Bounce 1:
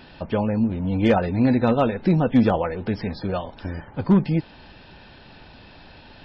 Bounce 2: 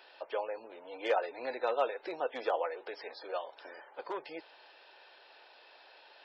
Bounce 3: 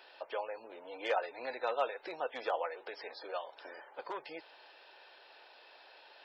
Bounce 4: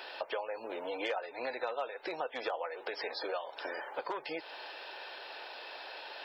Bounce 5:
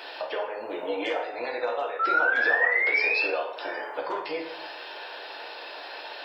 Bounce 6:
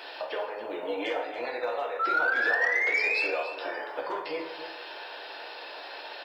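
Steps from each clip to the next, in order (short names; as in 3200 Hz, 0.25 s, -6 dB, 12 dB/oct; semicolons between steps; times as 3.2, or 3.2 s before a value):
inverse Chebyshev high-pass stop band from 220 Hz, stop band 40 dB; gain -8.5 dB
dynamic EQ 330 Hz, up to -6 dB, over -46 dBFS, Q 0.82
compressor 5:1, threshold -47 dBFS, peak gain reduction 17.5 dB; gain +12 dB
painted sound rise, 1.99–3.25, 1300–2700 Hz -30 dBFS; plate-style reverb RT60 0.81 s, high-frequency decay 0.6×, DRR 0 dB; gain +3.5 dB
soft clip -13.5 dBFS, distortion -24 dB; short-mantissa float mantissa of 6-bit; echo 0.283 s -12.5 dB; gain -2 dB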